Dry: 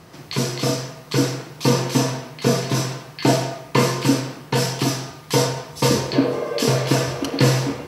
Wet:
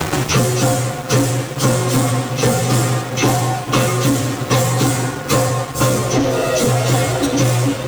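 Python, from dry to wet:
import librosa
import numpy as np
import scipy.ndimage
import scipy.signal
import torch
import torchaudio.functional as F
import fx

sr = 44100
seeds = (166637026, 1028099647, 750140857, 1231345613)

p1 = fx.partial_stretch(x, sr, pct=111)
p2 = p1 + fx.echo_bbd(p1, sr, ms=212, stages=2048, feedback_pct=76, wet_db=-21.5, dry=0)
p3 = fx.rider(p2, sr, range_db=4, speed_s=0.5)
p4 = fx.leveller(p3, sr, passes=3)
p5 = fx.band_squash(p4, sr, depth_pct=100)
y = p5 * librosa.db_to_amplitude(-2.0)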